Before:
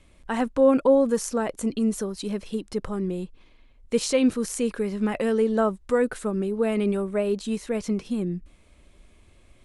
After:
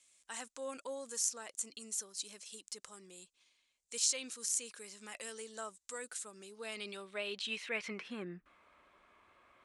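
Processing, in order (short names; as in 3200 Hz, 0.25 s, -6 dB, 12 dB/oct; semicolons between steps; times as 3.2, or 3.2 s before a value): band-pass sweep 7300 Hz -> 1200 Hz, 6.28–8.59; dynamic EQ 8100 Hz, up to -5 dB, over -49 dBFS, Q 1.1; gain +6.5 dB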